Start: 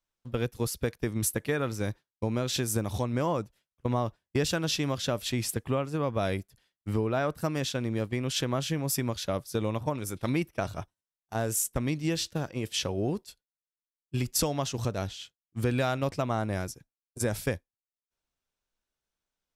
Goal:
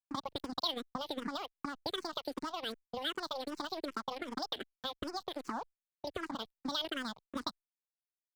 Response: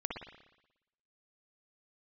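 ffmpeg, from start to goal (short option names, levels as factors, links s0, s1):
-filter_complex "[0:a]acrossover=split=1100[s0][s1];[s0]acompressor=threshold=0.0141:ratio=12[s2];[s1]asuperpass=centerf=1600:order=8:qfactor=1.7[s3];[s2][s3]amix=inputs=2:normalize=0,asetrate=103194,aresample=44100,aeval=exprs='sgn(val(0))*max(abs(val(0))-0.00266,0)':c=same,asplit=2[s4][s5];[s5]afreqshift=-2.6[s6];[s4][s6]amix=inputs=2:normalize=1,volume=2"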